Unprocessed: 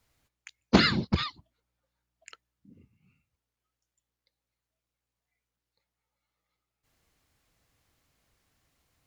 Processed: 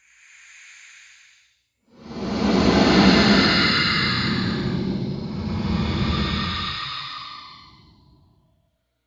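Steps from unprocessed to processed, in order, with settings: Paulstretch 7.8×, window 0.25 s, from 0.38 s; trim +4.5 dB

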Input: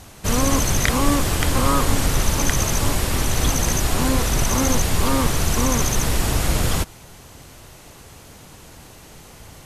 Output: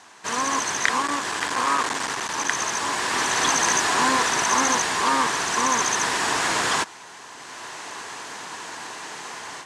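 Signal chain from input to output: level rider gain up to 13 dB; 1.02–2.49 s: hard clipper -14.5 dBFS, distortion -16 dB; cabinet simulation 410–8300 Hz, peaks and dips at 550 Hz -7 dB, 1 kHz +8 dB, 1.7 kHz +8 dB; trim -3.5 dB

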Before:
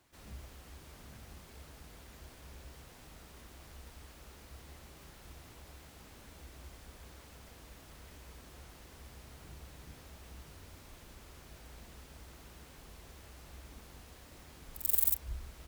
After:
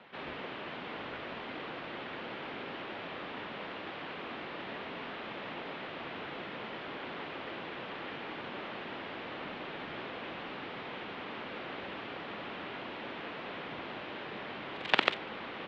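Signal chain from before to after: integer overflow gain 12 dB; mistuned SSB -140 Hz 360–3500 Hz; trim +18 dB

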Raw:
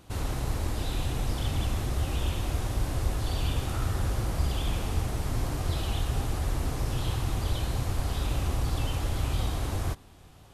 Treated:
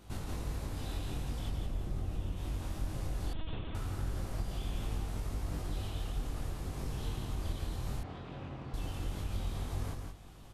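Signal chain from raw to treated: octave divider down 1 oct, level 0 dB; 1.49–2.37 s: tilt shelf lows +4.5 dB; compression 4:1, threshold -33 dBFS, peak gain reduction 15 dB; chorus 0.19 Hz, delay 20 ms, depth 2.2 ms; delay 169 ms -4.5 dB; 3.33–3.75 s: LPC vocoder at 8 kHz pitch kept; 8.03–8.74 s: band-pass 130–2500 Hz

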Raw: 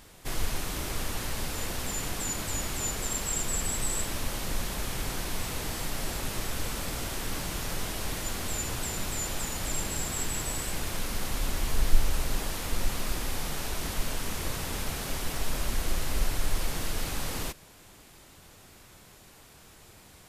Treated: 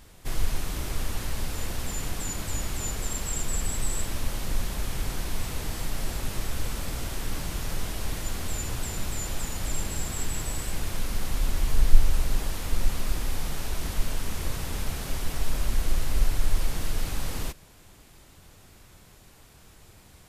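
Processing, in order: bass shelf 130 Hz +8 dB; trim -2 dB

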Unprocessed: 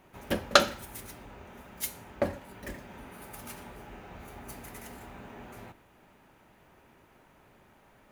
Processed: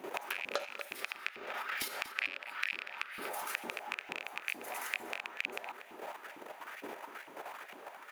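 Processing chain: rattle on loud lows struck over -44 dBFS, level -17 dBFS; level held to a coarse grid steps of 10 dB; time-frequency box 0.93–3.29 s, 1.1–5.6 kHz +8 dB; compression 12:1, threshold -52 dBFS, peak gain reduction 33 dB; LFO high-pass saw up 2.2 Hz 280–2400 Hz; echo from a far wall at 41 m, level -11 dB; trim +15.5 dB

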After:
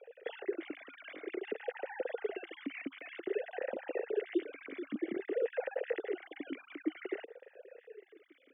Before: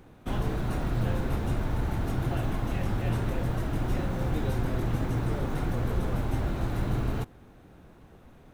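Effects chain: formants replaced by sine waves; dynamic bell 880 Hz, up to +6 dB, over -43 dBFS, Q 1.7; compression, threshold -26 dBFS, peak gain reduction 10 dB; talking filter e-i 0.53 Hz; trim +2.5 dB

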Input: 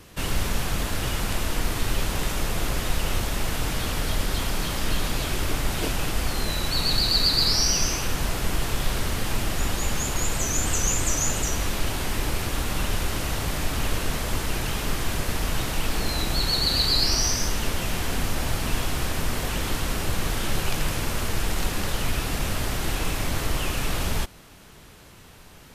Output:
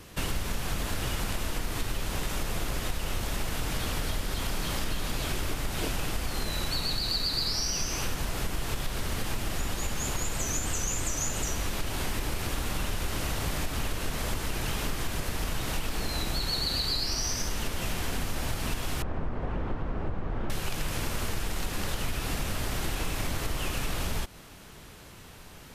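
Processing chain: 19.02–20.50 s: low-pass 1.1 kHz 12 dB/octave; compression, threshold -26 dBFS, peak gain reduction 10 dB

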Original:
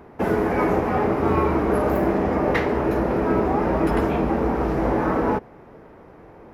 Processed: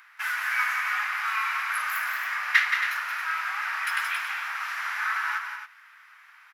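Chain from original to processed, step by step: steep high-pass 1.4 kHz 36 dB/octave; loudspeakers at several distances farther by 60 m -6 dB, 94 m -9 dB; trim +7 dB

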